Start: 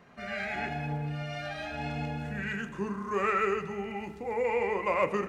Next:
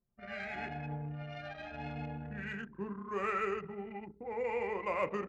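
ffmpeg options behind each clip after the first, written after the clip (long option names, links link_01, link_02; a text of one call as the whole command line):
ffmpeg -i in.wav -af "anlmdn=1.58,volume=-6.5dB" out.wav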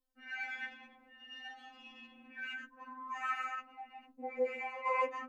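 ffmpeg -i in.wav -af "afftfilt=real='re*3.46*eq(mod(b,12),0)':imag='im*3.46*eq(mod(b,12),0)':win_size=2048:overlap=0.75,volume=2.5dB" out.wav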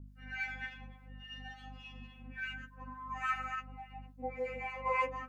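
ffmpeg -i in.wav -filter_complex "[0:a]aeval=exprs='val(0)+0.00282*(sin(2*PI*50*n/s)+sin(2*PI*2*50*n/s)/2+sin(2*PI*3*50*n/s)/3+sin(2*PI*4*50*n/s)/4+sin(2*PI*5*50*n/s)/5)':channel_layout=same,acrossover=split=1000[link_01][link_02];[link_01]aeval=exprs='val(0)*(1-0.7/2+0.7/2*cos(2*PI*3.5*n/s))':channel_layout=same[link_03];[link_02]aeval=exprs='val(0)*(1-0.7/2-0.7/2*cos(2*PI*3.5*n/s))':channel_layout=same[link_04];[link_03][link_04]amix=inputs=2:normalize=0,volume=4dB" out.wav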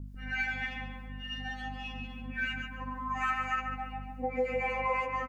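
ffmpeg -i in.wav -filter_complex "[0:a]acompressor=threshold=-37dB:ratio=6,asplit=2[link_01][link_02];[link_02]adelay=144,lowpass=frequency=2300:poles=1,volume=-4.5dB,asplit=2[link_03][link_04];[link_04]adelay=144,lowpass=frequency=2300:poles=1,volume=0.45,asplit=2[link_05][link_06];[link_06]adelay=144,lowpass=frequency=2300:poles=1,volume=0.45,asplit=2[link_07][link_08];[link_08]adelay=144,lowpass=frequency=2300:poles=1,volume=0.45,asplit=2[link_09][link_10];[link_10]adelay=144,lowpass=frequency=2300:poles=1,volume=0.45,asplit=2[link_11][link_12];[link_12]adelay=144,lowpass=frequency=2300:poles=1,volume=0.45[link_13];[link_03][link_05][link_07][link_09][link_11][link_13]amix=inputs=6:normalize=0[link_14];[link_01][link_14]amix=inputs=2:normalize=0,volume=8.5dB" out.wav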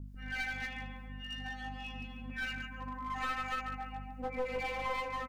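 ffmpeg -i in.wav -af "aeval=exprs='clip(val(0),-1,0.02)':channel_layout=same,volume=-3dB" out.wav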